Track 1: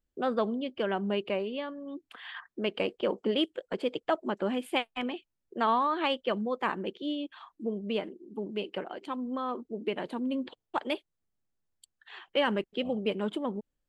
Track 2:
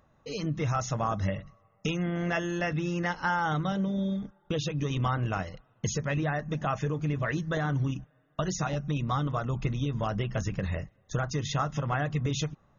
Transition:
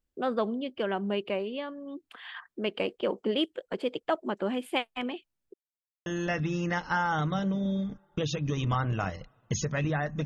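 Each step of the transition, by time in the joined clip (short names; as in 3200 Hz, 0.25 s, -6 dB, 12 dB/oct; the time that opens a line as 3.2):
track 1
5.54–6.06 mute
6.06 switch to track 2 from 2.39 s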